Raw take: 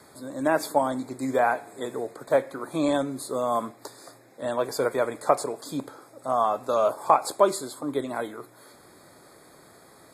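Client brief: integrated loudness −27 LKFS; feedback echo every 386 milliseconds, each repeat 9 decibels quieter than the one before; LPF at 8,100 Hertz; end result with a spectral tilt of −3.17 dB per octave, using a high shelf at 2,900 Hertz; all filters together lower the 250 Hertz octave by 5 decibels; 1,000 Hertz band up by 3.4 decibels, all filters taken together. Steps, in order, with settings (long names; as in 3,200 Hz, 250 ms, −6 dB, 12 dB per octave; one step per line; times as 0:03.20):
low-pass filter 8,100 Hz
parametric band 250 Hz −6.5 dB
parametric band 1,000 Hz +4 dB
high-shelf EQ 2,900 Hz +6.5 dB
repeating echo 386 ms, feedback 35%, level −9 dB
level −2.5 dB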